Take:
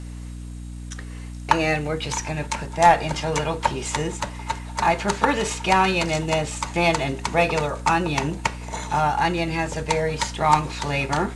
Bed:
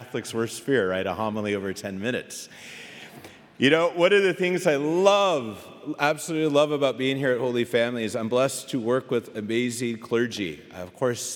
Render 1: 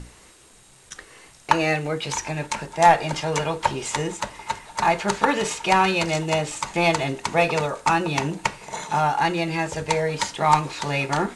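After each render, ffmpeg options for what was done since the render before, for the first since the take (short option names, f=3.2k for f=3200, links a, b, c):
-af "bandreject=f=60:t=h:w=6,bandreject=f=120:t=h:w=6,bandreject=f=180:t=h:w=6,bandreject=f=240:t=h:w=6,bandreject=f=300:t=h:w=6"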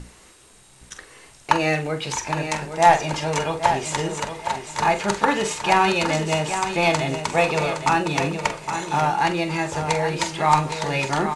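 -filter_complex "[0:a]asplit=2[a][b];[b]adelay=45,volume=-11dB[c];[a][c]amix=inputs=2:normalize=0,aecho=1:1:815|1630|2445|3260:0.376|0.113|0.0338|0.0101"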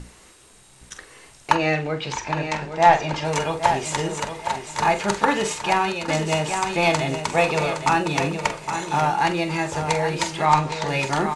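-filter_complex "[0:a]asettb=1/sr,asplit=3[a][b][c];[a]atrim=end=1.554[d];[b]atrim=start=1.55:end=3.25,asetpts=PTS-STARTPTS,afade=t=in:d=0.004:c=qsin,afade=t=out:st=1.696:d=0.004:c=qsin,lowpass=4.9k[e];[c]atrim=start=3.246[f];[d][e]acrossfade=d=0.004:c1=hsin:c2=qsin[g];[g][f]acrossfade=d=0.004:c1=qsin:c2=hsin,asettb=1/sr,asplit=3[h][i][j];[h]atrim=end=10.454[k];[i]atrim=start=10.45:end=10.88,asetpts=PTS-STARTPTS,afade=t=in:d=0.004:c=qsin,afade=t=out:st=0.426:d=0.004:c=qsin,lowpass=7k[l];[j]atrim=start=10.876[m];[k][l]acrossfade=d=0.004:c1=hsin:c2=qsin[n];[n][m]acrossfade=d=0.004:c1=qsin:c2=hsin,asplit=2[o][p];[o]atrim=end=6.08,asetpts=PTS-STARTPTS,afade=t=out:st=5.51:d=0.57:silence=0.334965[q];[p]atrim=start=6.08,asetpts=PTS-STARTPTS,afade=t=in:d=0.004:c=hsin:silence=0.334965[r];[q][r]concat=n=2:v=0:a=1"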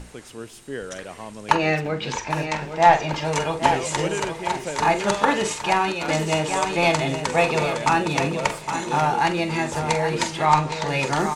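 -filter_complex "[1:a]volume=-10dB[a];[0:a][a]amix=inputs=2:normalize=0"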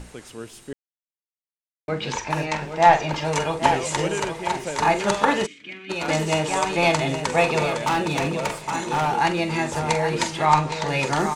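-filter_complex "[0:a]asplit=3[a][b][c];[a]afade=t=out:st=5.45:d=0.02[d];[b]asplit=3[e][f][g];[e]bandpass=f=270:t=q:w=8,volume=0dB[h];[f]bandpass=f=2.29k:t=q:w=8,volume=-6dB[i];[g]bandpass=f=3.01k:t=q:w=8,volume=-9dB[j];[h][i][j]amix=inputs=3:normalize=0,afade=t=in:st=5.45:d=0.02,afade=t=out:st=5.89:d=0.02[k];[c]afade=t=in:st=5.89:d=0.02[l];[d][k][l]amix=inputs=3:normalize=0,asettb=1/sr,asplit=3[m][n][o];[m]atrim=end=7.774[p];[n]atrim=start=7.77:end=9.16,asetpts=PTS-STARTPTS,afade=t=in:d=0.004:c=qsin,afade=t=out:st=1.386:d=0.004:c=qsin,asoftclip=type=hard:threshold=-18dB[q];[o]atrim=start=9.156[r];[p][q]acrossfade=d=0.004:c1=hsin:c2=qsin[s];[s][r]acrossfade=d=0.004:c1=qsin:c2=hsin,asplit=3[t][u][v];[t]atrim=end=0.73,asetpts=PTS-STARTPTS,afade=t=out:st=0.726:d=0.004:c=hsin[w];[u]atrim=start=0.73:end=1.88,asetpts=PTS-STARTPTS,volume=0[x];[v]atrim=start=1.88,asetpts=PTS-STARTPTS,afade=t=in:d=0.004:c=hsin[y];[w][x][y]concat=n=3:v=0:a=1"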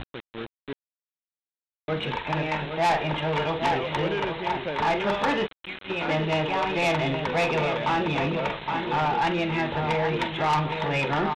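-af "aresample=8000,acrusher=bits=5:mix=0:aa=0.000001,aresample=44100,asoftclip=type=tanh:threshold=-18.5dB"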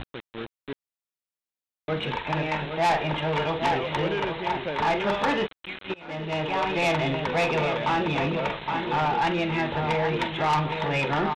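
-filter_complex "[0:a]asplit=2[a][b];[a]atrim=end=5.94,asetpts=PTS-STARTPTS,afade=t=out:st=5.936:d=0.004:c=hsin:silence=0.0630957[c];[b]atrim=start=5.94,asetpts=PTS-STARTPTS,afade=t=in:d=0.65:silence=0.0630957[d];[c][d]concat=n=2:v=0:a=1"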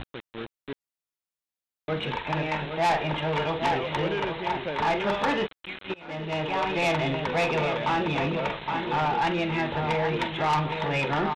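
-af "volume=-1dB"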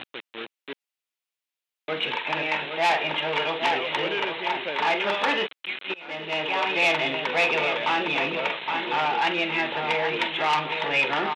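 -af "highpass=300,equalizer=f=2.7k:t=o:w=1.2:g=8"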